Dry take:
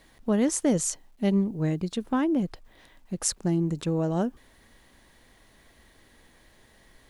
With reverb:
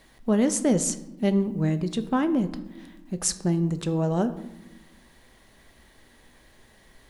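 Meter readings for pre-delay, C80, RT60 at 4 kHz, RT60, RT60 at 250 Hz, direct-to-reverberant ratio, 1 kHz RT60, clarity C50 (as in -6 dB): 5 ms, 15.5 dB, 0.55 s, 1.0 s, 1.7 s, 9.5 dB, 0.90 s, 13.5 dB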